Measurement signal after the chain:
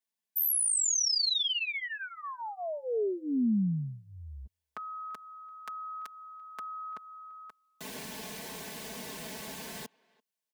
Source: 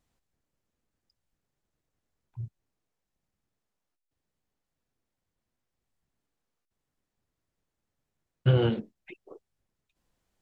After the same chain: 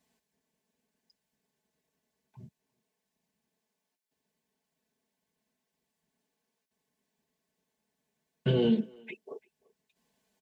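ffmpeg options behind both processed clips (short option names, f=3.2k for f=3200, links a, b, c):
-filter_complex "[0:a]highpass=140,bandreject=f=1.3k:w=5,aecho=1:1:4.6:0.91,acrossover=split=440|3000[a][b][c];[b]acompressor=threshold=-42dB:ratio=6[d];[a][d][c]amix=inputs=3:normalize=0,asplit=2[e][f];[f]adelay=340,highpass=300,lowpass=3.4k,asoftclip=type=hard:threshold=-23.5dB,volume=-25dB[g];[e][g]amix=inputs=2:normalize=0,volume=2dB"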